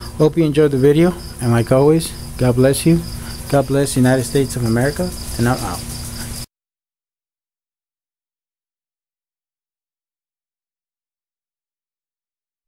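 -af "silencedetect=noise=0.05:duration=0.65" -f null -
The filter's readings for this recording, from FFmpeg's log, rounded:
silence_start: 6.44
silence_end: 12.67 | silence_duration: 6.23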